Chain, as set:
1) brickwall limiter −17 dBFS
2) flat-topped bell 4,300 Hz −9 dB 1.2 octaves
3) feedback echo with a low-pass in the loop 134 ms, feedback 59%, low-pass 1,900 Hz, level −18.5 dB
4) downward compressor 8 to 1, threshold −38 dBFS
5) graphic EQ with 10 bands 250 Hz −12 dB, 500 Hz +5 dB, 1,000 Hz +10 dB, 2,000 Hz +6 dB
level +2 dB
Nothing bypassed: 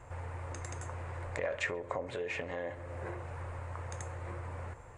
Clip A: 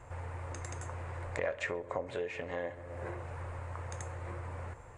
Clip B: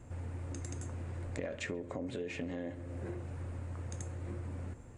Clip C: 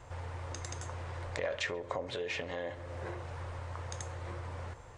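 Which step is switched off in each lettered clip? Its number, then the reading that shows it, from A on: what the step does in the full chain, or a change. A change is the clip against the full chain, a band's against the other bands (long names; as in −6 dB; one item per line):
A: 1, 4 kHz band −2.5 dB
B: 5, change in crest factor −2.5 dB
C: 2, 4 kHz band +6.5 dB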